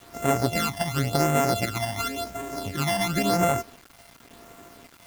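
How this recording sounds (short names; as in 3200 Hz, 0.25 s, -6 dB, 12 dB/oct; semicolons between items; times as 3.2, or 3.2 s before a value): a buzz of ramps at a fixed pitch in blocks of 64 samples; phasing stages 12, 0.93 Hz, lowest notch 410–4600 Hz; a quantiser's noise floor 8-bit, dither none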